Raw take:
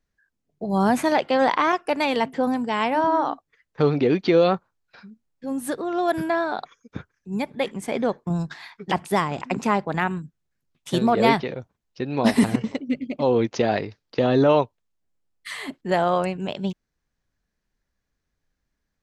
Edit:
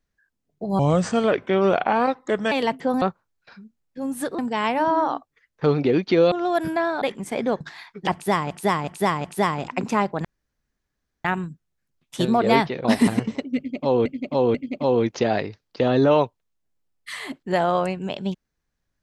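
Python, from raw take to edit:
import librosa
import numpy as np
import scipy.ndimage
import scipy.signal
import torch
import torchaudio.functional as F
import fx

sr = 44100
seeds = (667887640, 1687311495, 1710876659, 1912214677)

y = fx.edit(x, sr, fx.speed_span(start_s=0.79, length_s=1.26, speed=0.73),
    fx.move(start_s=4.48, length_s=1.37, to_s=2.55),
    fx.cut(start_s=6.55, length_s=1.03),
    fx.cut(start_s=8.17, length_s=0.28),
    fx.repeat(start_s=8.98, length_s=0.37, count=4),
    fx.insert_room_tone(at_s=9.98, length_s=1.0),
    fx.cut(start_s=11.58, length_s=0.63),
    fx.repeat(start_s=12.93, length_s=0.49, count=3), tone=tone)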